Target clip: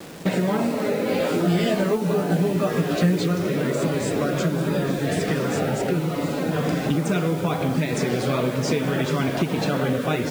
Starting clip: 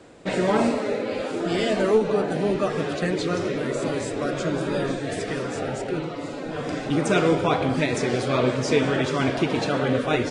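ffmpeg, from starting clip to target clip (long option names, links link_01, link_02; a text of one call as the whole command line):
ffmpeg -i in.wav -filter_complex "[0:a]highpass=frequency=74:poles=1,equalizer=frequency=170:width=2.5:gain=11,acompressor=threshold=-26dB:ratio=10,acrusher=bits=7:mix=0:aa=0.000001,asettb=1/sr,asplit=3[link_01][link_02][link_03];[link_01]atrim=end=1.074[link_04];[link_02]atrim=start=1.07:end=3.24,asetpts=PTS-STARTPTS,afade=type=in:duration=0.004:curve=qsin,afade=type=out:start_time=2.166:duration=0.004:curve=qsin,asplit=2[link_05][link_06];[link_06]adelay=17,volume=-4.5dB[link_07];[link_05][link_07]amix=inputs=2:normalize=0,atrim=end_sample=95697[link_08];[link_03]atrim=start=3.236[link_09];[link_04][link_08]acrossfade=duration=0.004:curve1=hsin:curve2=qsin[link_10];[link_10][link_09]acrossfade=duration=0.004:curve1=qsin:curve2=hsin,volume=7dB" out.wav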